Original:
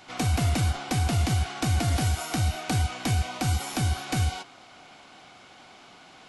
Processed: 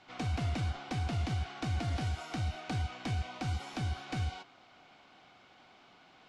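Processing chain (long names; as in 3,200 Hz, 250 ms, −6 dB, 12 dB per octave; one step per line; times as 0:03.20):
low-pass filter 4,600 Hz 12 dB per octave
level −9 dB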